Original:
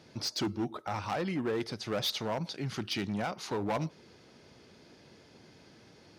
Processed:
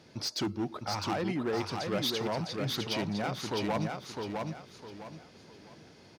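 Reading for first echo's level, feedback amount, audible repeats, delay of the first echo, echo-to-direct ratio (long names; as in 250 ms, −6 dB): −4.0 dB, 32%, 4, 656 ms, −3.5 dB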